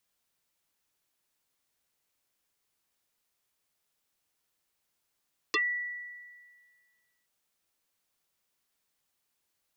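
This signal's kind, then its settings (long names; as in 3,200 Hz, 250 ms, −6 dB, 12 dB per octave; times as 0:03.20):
two-operator FM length 1.72 s, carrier 1,950 Hz, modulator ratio 0.39, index 6, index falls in 0.10 s exponential, decay 1.77 s, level −23 dB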